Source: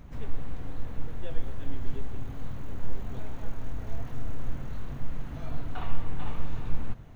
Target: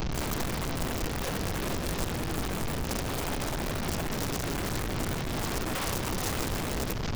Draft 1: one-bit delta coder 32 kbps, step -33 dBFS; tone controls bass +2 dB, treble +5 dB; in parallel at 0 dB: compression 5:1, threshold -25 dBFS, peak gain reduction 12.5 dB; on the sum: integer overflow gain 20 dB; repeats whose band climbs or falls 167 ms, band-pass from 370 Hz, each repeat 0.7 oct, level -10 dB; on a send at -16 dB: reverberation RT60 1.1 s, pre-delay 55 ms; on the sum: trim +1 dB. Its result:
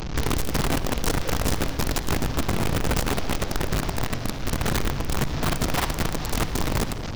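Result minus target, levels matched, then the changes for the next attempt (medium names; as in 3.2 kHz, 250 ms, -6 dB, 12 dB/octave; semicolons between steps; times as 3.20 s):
integer overflow: distortion -12 dB
change: integer overflow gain 27 dB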